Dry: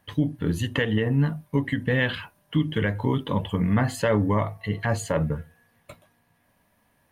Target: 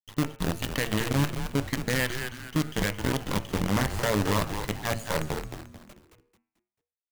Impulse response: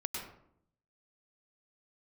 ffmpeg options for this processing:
-filter_complex "[0:a]acrusher=bits=4:dc=4:mix=0:aa=0.000001,bandreject=f=112.7:t=h:w=4,bandreject=f=225.4:t=h:w=4,bandreject=f=338.1:t=h:w=4,bandreject=f=450.8:t=h:w=4,bandreject=f=563.5:t=h:w=4,bandreject=f=676.2:t=h:w=4,bandreject=f=788.9:t=h:w=4,bandreject=f=901.6:t=h:w=4,bandreject=f=1.0143k:t=h:w=4,bandreject=f=1.127k:t=h:w=4,bandreject=f=1.2397k:t=h:w=4,bandreject=f=1.3524k:t=h:w=4,bandreject=f=1.4651k:t=h:w=4,bandreject=f=1.5778k:t=h:w=4,bandreject=f=1.6905k:t=h:w=4,bandreject=f=1.8032k:t=h:w=4,bandreject=f=1.9159k:t=h:w=4,bandreject=f=2.0286k:t=h:w=4,bandreject=f=2.1413k:t=h:w=4,bandreject=f=2.254k:t=h:w=4,bandreject=f=2.3667k:t=h:w=4,bandreject=f=2.4794k:t=h:w=4,bandreject=f=2.5921k:t=h:w=4,bandreject=f=2.7048k:t=h:w=4,bandreject=f=2.8175k:t=h:w=4,bandreject=f=2.9302k:t=h:w=4,bandreject=f=3.0429k:t=h:w=4,asplit=5[a][b][c][d][e];[b]adelay=220,afreqshift=-120,volume=-7dB[f];[c]adelay=440,afreqshift=-240,volume=-15.6dB[g];[d]adelay=660,afreqshift=-360,volume=-24.3dB[h];[e]adelay=880,afreqshift=-480,volume=-32.9dB[i];[a][f][g][h][i]amix=inputs=5:normalize=0,volume=-5dB"

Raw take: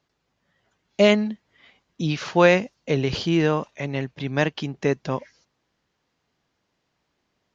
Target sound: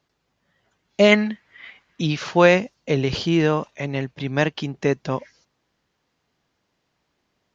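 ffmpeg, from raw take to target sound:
-filter_complex "[0:a]asplit=3[a][b][c];[a]afade=t=out:st=1.11:d=0.02[d];[b]equalizer=f=1.9k:t=o:w=1.6:g=12.5,afade=t=in:st=1.11:d=0.02,afade=t=out:st=2.06:d=0.02[e];[c]afade=t=in:st=2.06:d=0.02[f];[d][e][f]amix=inputs=3:normalize=0,volume=1.5dB"

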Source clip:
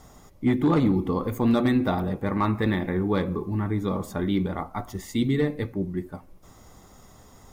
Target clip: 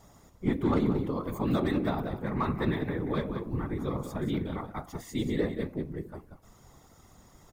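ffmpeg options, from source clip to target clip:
-af "aecho=1:1:185:0.335,afftfilt=real='hypot(re,im)*cos(2*PI*random(0))':imag='hypot(re,im)*sin(2*PI*random(1))':win_size=512:overlap=0.75"

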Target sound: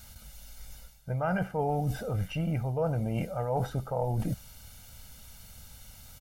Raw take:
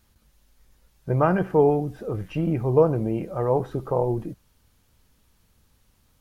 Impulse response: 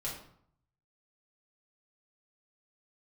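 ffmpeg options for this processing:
-af "highshelf=f=2.6k:g=8,aecho=1:1:1.4:0.76,areverse,acompressor=threshold=-35dB:ratio=8,areverse,volume=7.5dB"

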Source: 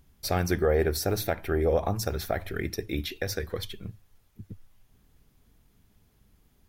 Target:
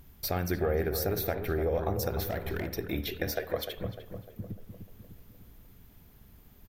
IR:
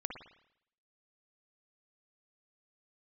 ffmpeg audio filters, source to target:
-filter_complex "[0:a]equalizer=f=14k:w=3.6:g=15,acompressor=threshold=-42dB:ratio=2,asettb=1/sr,asplit=3[a][b][c];[a]atrim=end=2.214[d];[b]atrim=start=2.21:end=2.75,asetpts=PTS-STARTPTS,afade=t=in:d=0.004:c=qsin,afade=t=out:st=0.536:d=0.004:c=qsin,volume=34dB,asoftclip=hard,volume=-34dB[e];[c]atrim=start=2.746[f];[d][e]acrossfade=d=0.004:c1=hsin:c2=qsin[g];[g][f]acrossfade=d=0.004:c1=qsin:c2=hsin,asettb=1/sr,asplit=3[h][i][j];[h]atrim=end=3.284[k];[i]atrim=start=3.28:end=3.78,asetpts=PTS-STARTPTS,afade=t=in:d=0.004:c=qsin,afade=t=out:st=0.496:d=0.004:c=qsin,highpass=f=640:t=q:w=7.3[l];[j]atrim=start=3.776[m];[k][l]acrossfade=d=0.004:c1=hsin:c2=qsin[n];[n][m]acrossfade=d=0.004:c1=qsin:c2=hsin,asplit=2[o][p];[p]adelay=301,lowpass=f=1.3k:p=1,volume=-7dB,asplit=2[q][r];[r]adelay=301,lowpass=f=1.3k:p=1,volume=0.54,asplit=2[s][t];[t]adelay=301,lowpass=f=1.3k:p=1,volume=0.54,asplit=2[u][v];[v]adelay=301,lowpass=f=1.3k:p=1,volume=0.54,asplit=2[w][x];[x]adelay=301,lowpass=f=1.3k:p=1,volume=0.54,asplit=2[y][z];[z]adelay=301,lowpass=f=1.3k:p=1,volume=0.54,asplit=2[aa][ab];[ab]adelay=301,lowpass=f=1.3k:p=1,volume=0.54[ac];[o][q][s][u][w][y][aa][ac]amix=inputs=8:normalize=0,asplit=2[ad][ae];[1:a]atrim=start_sample=2205,lowpass=5k[af];[ae][af]afir=irnorm=-1:irlink=0,volume=-7dB[ag];[ad][ag]amix=inputs=2:normalize=0,volume=3.5dB"

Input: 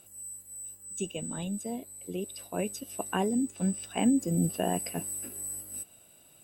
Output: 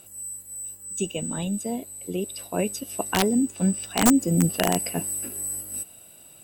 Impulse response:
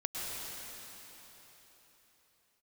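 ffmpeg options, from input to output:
-filter_complex "[0:a]asplit=2[a][b];[b]aderivative[c];[1:a]atrim=start_sample=2205,asetrate=41013,aresample=44100[d];[c][d]afir=irnorm=-1:irlink=0,volume=-21.5dB[e];[a][e]amix=inputs=2:normalize=0,aeval=exprs='(mod(7.08*val(0)+1,2)-1)/7.08':c=same,volume=6.5dB"

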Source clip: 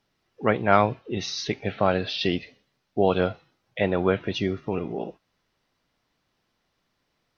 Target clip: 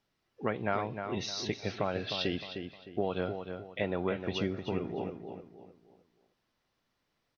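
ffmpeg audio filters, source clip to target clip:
-filter_complex "[0:a]acompressor=threshold=-21dB:ratio=6,asplit=2[a][b];[b]adelay=307,lowpass=f=3.2k:p=1,volume=-7dB,asplit=2[c][d];[d]adelay=307,lowpass=f=3.2k:p=1,volume=0.35,asplit=2[e][f];[f]adelay=307,lowpass=f=3.2k:p=1,volume=0.35,asplit=2[g][h];[h]adelay=307,lowpass=f=3.2k:p=1,volume=0.35[i];[c][e][g][i]amix=inputs=4:normalize=0[j];[a][j]amix=inputs=2:normalize=0,volume=-6dB"

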